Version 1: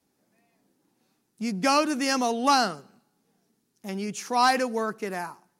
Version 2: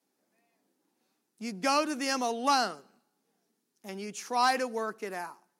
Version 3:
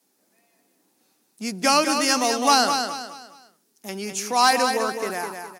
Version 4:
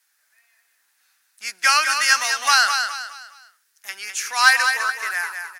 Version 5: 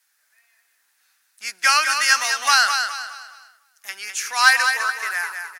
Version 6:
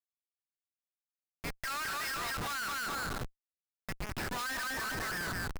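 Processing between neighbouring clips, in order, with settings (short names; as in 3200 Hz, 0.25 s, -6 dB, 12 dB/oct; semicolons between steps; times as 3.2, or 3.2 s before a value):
HPF 250 Hz 12 dB/oct; gain -4.5 dB
high shelf 4400 Hz +8 dB; on a send: feedback echo 0.207 s, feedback 36%, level -6.5 dB; on the sum: gain +7 dB
resonant high-pass 1600 Hz, resonance Q 3.2; gain +1.5 dB
outdoor echo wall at 86 m, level -23 dB
rippled Chebyshev low-pass 5300 Hz, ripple 9 dB; tube stage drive 20 dB, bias 0.55; Schmitt trigger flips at -36.5 dBFS; gain -6 dB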